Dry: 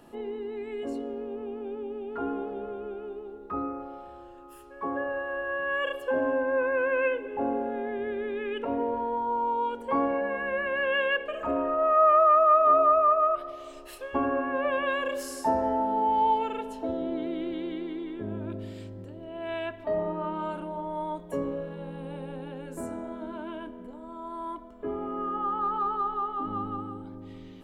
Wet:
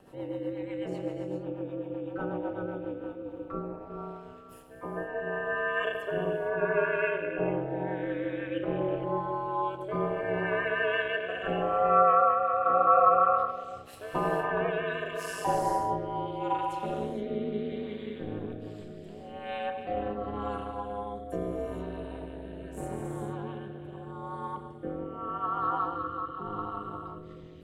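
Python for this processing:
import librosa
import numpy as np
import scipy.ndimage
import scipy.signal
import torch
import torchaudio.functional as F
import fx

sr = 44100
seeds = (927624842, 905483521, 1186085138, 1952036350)

y = fx.rev_gated(x, sr, seeds[0], gate_ms=490, shape='flat', drr_db=2.0)
y = fx.rotary_switch(y, sr, hz=8.0, then_hz=0.8, switch_at_s=2.59)
y = y * np.sin(2.0 * np.pi * 100.0 * np.arange(len(y)) / sr)
y = F.gain(torch.from_numpy(y), 2.0).numpy()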